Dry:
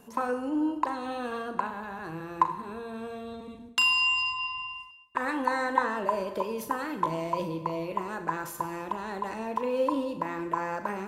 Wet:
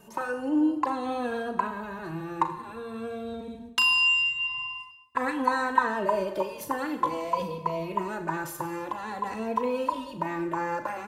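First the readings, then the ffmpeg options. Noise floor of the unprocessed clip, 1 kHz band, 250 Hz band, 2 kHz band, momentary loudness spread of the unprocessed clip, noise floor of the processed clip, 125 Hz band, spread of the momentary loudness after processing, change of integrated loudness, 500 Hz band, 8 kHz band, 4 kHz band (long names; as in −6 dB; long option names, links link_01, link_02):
−46 dBFS, +1.0 dB, +2.5 dB, +2.5 dB, 13 LU, −45 dBFS, +1.0 dB, 13 LU, +2.0 dB, +1.0 dB, +0.5 dB, +2.5 dB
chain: -filter_complex "[0:a]asplit=2[link_01][link_02];[link_02]adelay=2.8,afreqshift=-0.49[link_03];[link_01][link_03]amix=inputs=2:normalize=1,volume=4.5dB"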